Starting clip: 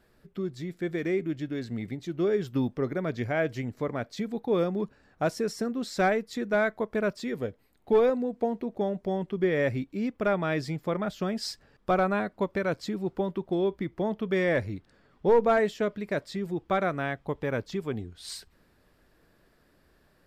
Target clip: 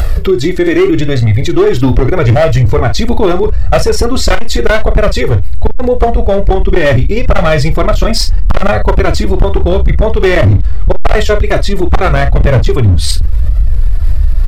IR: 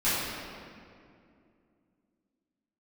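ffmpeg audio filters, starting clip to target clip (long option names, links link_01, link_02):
-filter_complex "[0:a]asubboost=boost=10:cutoff=73,acompressor=mode=upward:threshold=-39dB:ratio=2.5,lowshelf=frequency=110:width_type=q:width=1.5:gain=13.5,bandreject=frequency=1600:width=8.6,atempo=1.4,flanger=delay=1.5:depth=1.8:regen=17:speed=0.81:shape=sinusoidal,volume=27dB,asoftclip=hard,volume=-27dB,asplit=2[link_01][link_02];[link_02]adelay=40,volume=-11dB[link_03];[link_01][link_03]amix=inputs=2:normalize=0,alimiter=level_in=32dB:limit=-1dB:release=50:level=0:latency=1,volume=-1dB"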